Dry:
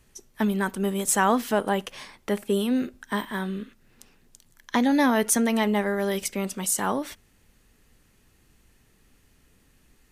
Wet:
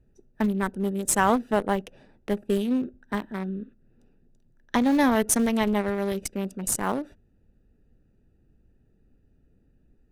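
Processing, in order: local Wiener filter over 41 samples; in parallel at -10.5 dB: Schmitt trigger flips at -19.5 dBFS

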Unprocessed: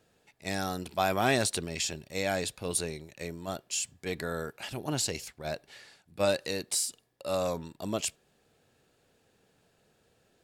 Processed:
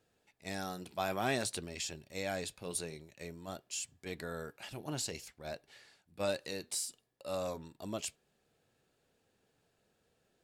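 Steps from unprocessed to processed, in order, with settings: flange 0.52 Hz, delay 2.3 ms, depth 4 ms, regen -80%; trim -3 dB

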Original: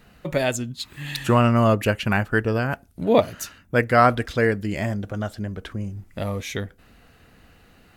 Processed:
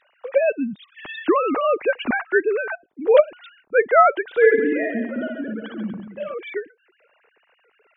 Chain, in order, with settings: formants replaced by sine waves; bass shelf 330 Hz +5 dB; 4.25–6.34 s: reverse bouncing-ball echo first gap 60 ms, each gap 1.3×, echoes 5

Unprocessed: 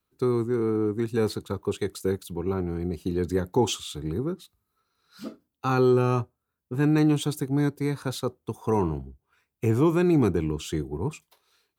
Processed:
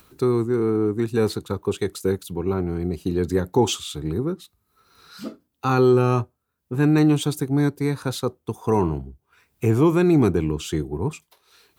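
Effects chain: upward compressor, threshold -42 dBFS; trim +4 dB

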